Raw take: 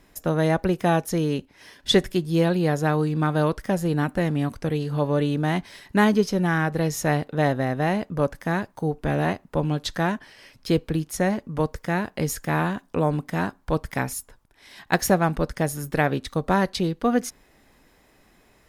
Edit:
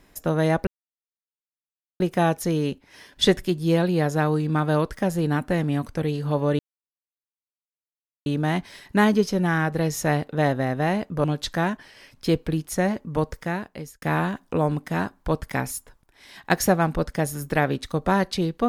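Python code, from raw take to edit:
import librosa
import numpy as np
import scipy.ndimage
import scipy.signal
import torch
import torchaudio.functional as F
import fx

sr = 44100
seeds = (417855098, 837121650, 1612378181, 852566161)

y = fx.edit(x, sr, fx.insert_silence(at_s=0.67, length_s=1.33),
    fx.insert_silence(at_s=5.26, length_s=1.67),
    fx.cut(start_s=8.24, length_s=1.42),
    fx.fade_out_span(start_s=11.74, length_s=0.7), tone=tone)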